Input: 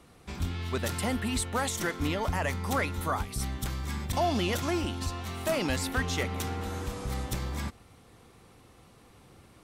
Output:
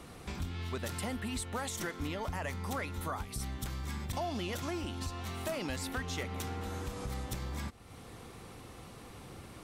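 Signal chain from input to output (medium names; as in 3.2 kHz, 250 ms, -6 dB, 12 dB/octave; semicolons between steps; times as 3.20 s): compression 2.5:1, threshold -48 dBFS, peak gain reduction 16 dB; trim +6.5 dB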